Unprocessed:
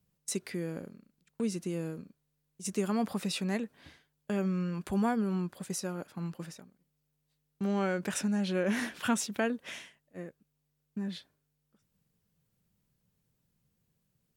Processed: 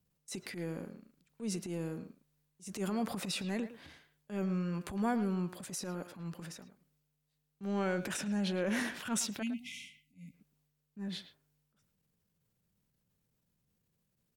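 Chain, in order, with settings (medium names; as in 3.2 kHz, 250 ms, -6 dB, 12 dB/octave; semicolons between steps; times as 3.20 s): spectral selection erased 9.42–10.34 s, 280–2000 Hz; transient shaper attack -12 dB, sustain +5 dB; speakerphone echo 110 ms, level -11 dB; trim -2.5 dB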